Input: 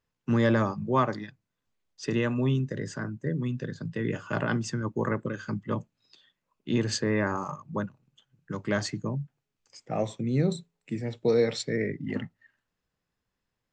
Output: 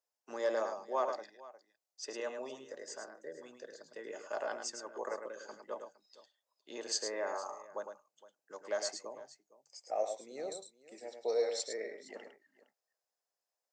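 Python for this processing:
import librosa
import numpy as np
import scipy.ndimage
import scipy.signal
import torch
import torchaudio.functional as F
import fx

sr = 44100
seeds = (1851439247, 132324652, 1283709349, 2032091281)

y = fx.ladder_highpass(x, sr, hz=610.0, resonance_pct=35)
y = fx.band_shelf(y, sr, hz=1800.0, db=-12.5, octaves=2.4)
y = fx.echo_multitap(y, sr, ms=(106, 462), db=(-7.0, -19.0))
y = F.gain(torch.from_numpy(y), 6.0).numpy()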